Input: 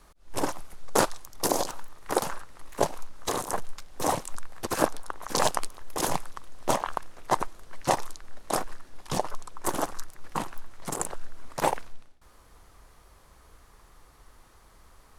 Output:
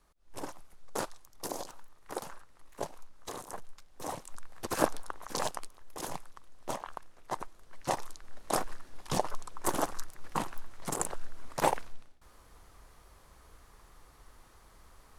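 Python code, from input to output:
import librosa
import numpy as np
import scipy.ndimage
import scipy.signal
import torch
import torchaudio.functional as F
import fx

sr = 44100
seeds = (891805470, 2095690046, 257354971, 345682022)

y = fx.gain(x, sr, db=fx.line((4.09, -12.5), (4.93, -2.0), (5.59, -11.5), (7.35, -11.5), (8.62, -2.0)))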